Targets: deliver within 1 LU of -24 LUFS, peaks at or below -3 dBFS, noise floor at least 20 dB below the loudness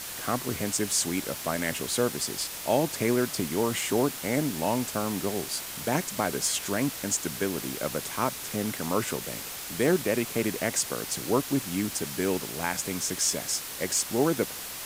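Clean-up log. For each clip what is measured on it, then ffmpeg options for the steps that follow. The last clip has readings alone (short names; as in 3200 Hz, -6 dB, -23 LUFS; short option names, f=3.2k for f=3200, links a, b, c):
noise floor -38 dBFS; noise floor target -48 dBFS; loudness -28.0 LUFS; peak -10.5 dBFS; loudness target -24.0 LUFS
-> -af "afftdn=nr=10:nf=-38"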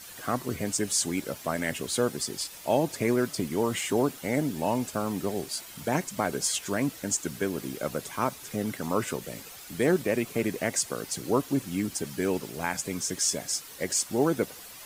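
noise floor -45 dBFS; noise floor target -49 dBFS
-> -af "afftdn=nr=6:nf=-45"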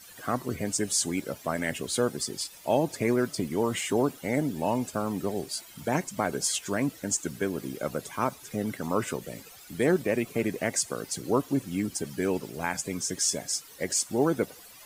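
noise floor -50 dBFS; loudness -29.0 LUFS; peak -11.0 dBFS; loudness target -24.0 LUFS
-> -af "volume=5dB"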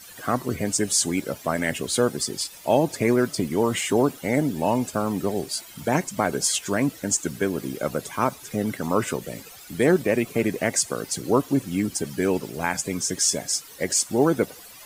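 loudness -24.0 LUFS; peak -6.0 dBFS; noise floor -45 dBFS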